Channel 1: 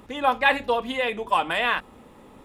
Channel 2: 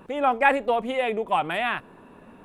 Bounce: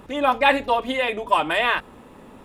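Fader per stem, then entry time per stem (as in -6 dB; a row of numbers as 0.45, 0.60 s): +2.0, -2.0 dB; 0.00, 0.00 s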